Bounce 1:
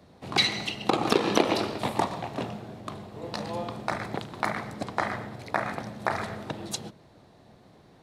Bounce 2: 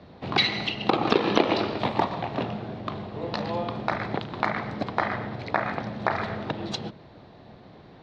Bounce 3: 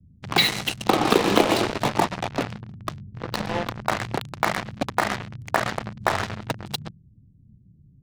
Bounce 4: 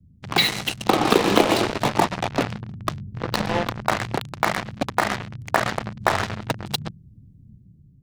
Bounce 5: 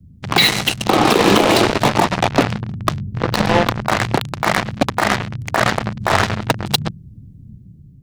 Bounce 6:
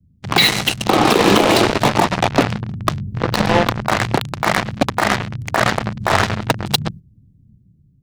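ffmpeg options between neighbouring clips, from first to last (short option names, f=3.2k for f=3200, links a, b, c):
-filter_complex "[0:a]lowpass=f=4.4k:w=0.5412,lowpass=f=4.4k:w=1.3066,asplit=2[a][b];[b]acompressor=threshold=-35dB:ratio=6,volume=1dB[c];[a][c]amix=inputs=2:normalize=0"
-filter_complex "[0:a]flanger=delay=3.4:depth=7.6:regen=80:speed=0.41:shape=triangular,acrossover=split=170[a][b];[b]acrusher=bits=4:mix=0:aa=0.5[c];[a][c]amix=inputs=2:normalize=0,volume=7.5dB"
-af "dynaudnorm=f=210:g=7:m=6.5dB"
-af "alimiter=level_in=10dB:limit=-1dB:release=50:level=0:latency=1,volume=-1dB"
-af "agate=range=-11dB:threshold=-31dB:ratio=16:detection=peak"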